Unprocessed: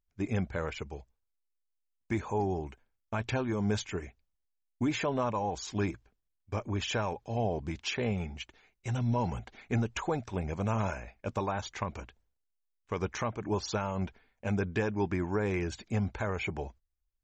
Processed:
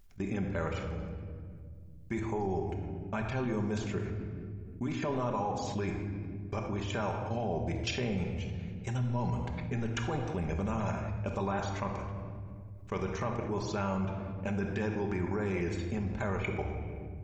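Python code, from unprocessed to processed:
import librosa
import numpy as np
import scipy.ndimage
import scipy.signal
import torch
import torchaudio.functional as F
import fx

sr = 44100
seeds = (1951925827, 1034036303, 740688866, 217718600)

y = fx.low_shelf(x, sr, hz=72.0, db=4.5)
y = fx.level_steps(y, sr, step_db=17)
y = fx.room_shoebox(y, sr, seeds[0], volume_m3=1200.0, walls='mixed', distance_m=1.2)
y = fx.env_flatten(y, sr, amount_pct=50)
y = F.gain(torch.from_numpy(y), -2.0).numpy()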